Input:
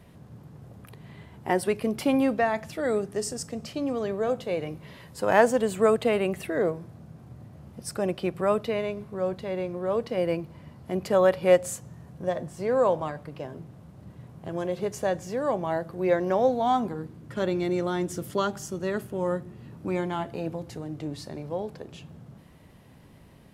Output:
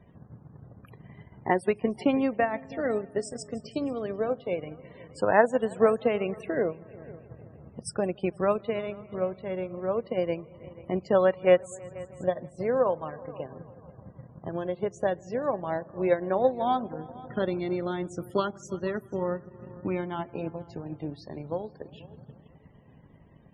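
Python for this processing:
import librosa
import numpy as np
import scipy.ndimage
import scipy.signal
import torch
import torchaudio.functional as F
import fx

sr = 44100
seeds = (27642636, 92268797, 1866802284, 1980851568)

y = fx.echo_heads(x, sr, ms=161, heads='all three', feedback_pct=46, wet_db=-21.0)
y = fx.transient(y, sr, attack_db=6, sustain_db=-6)
y = fx.spec_topn(y, sr, count=64)
y = F.gain(torch.from_numpy(y), -3.5).numpy()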